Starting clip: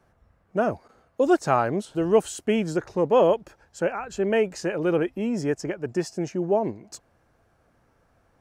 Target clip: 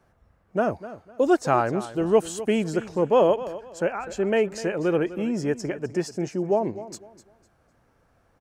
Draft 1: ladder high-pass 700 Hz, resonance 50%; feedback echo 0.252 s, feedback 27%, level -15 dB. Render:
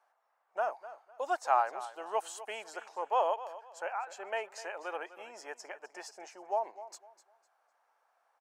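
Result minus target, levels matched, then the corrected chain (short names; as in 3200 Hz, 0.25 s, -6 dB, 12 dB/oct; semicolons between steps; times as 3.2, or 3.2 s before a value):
500 Hz band -3.5 dB
feedback echo 0.252 s, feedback 27%, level -15 dB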